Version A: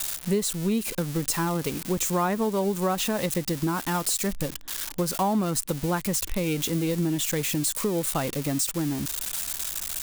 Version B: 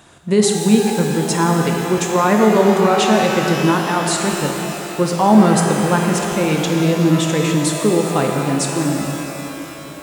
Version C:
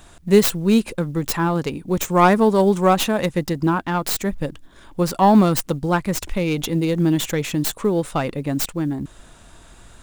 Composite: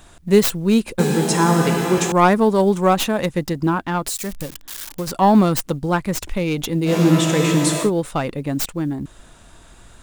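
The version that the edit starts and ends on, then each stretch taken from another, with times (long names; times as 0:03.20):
C
0:00.99–0:02.12: punch in from B
0:04.08–0:05.07: punch in from A
0:06.89–0:07.86: punch in from B, crossfade 0.10 s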